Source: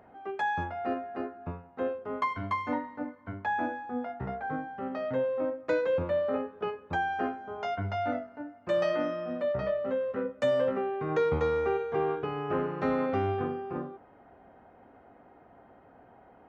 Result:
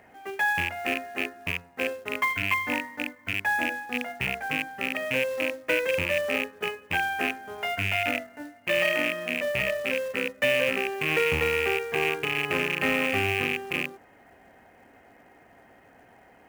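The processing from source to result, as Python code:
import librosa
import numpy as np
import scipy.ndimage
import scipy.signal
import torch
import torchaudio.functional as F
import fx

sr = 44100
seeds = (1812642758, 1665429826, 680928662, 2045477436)

y = fx.rattle_buzz(x, sr, strikes_db=-40.0, level_db=-26.0)
y = fx.band_shelf(y, sr, hz=2300.0, db=12.5, octaves=1.1)
y = fx.quant_float(y, sr, bits=2)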